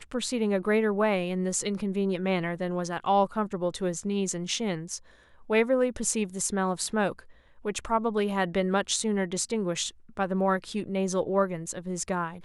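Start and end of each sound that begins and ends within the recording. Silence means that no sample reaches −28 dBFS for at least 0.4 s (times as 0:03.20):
0:05.50–0:07.12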